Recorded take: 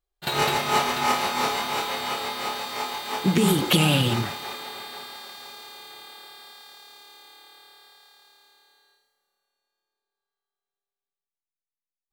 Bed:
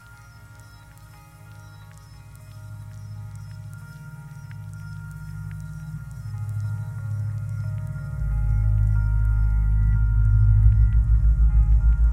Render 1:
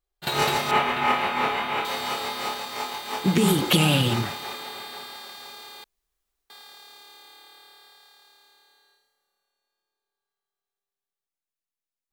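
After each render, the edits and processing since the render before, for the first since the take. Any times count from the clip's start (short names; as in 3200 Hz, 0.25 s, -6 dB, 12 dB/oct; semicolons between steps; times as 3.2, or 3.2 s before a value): 0.71–1.85 resonant high shelf 3800 Hz -12 dB, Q 1.5; 2.54–3.29 G.711 law mismatch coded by A; 5.84–6.5 room tone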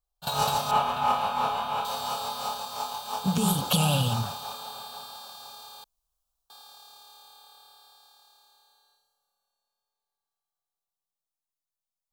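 fixed phaser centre 830 Hz, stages 4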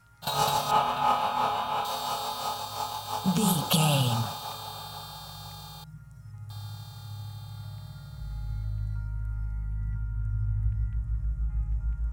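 add bed -12 dB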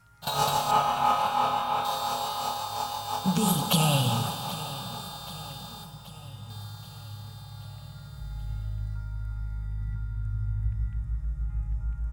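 feedback echo 0.78 s, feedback 58%, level -16 dB; Schroeder reverb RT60 3.3 s, combs from 28 ms, DRR 8.5 dB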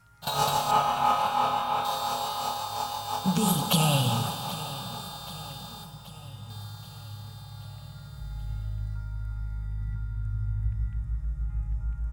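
nothing audible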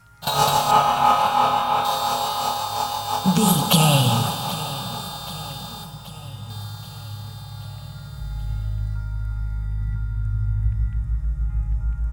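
gain +7 dB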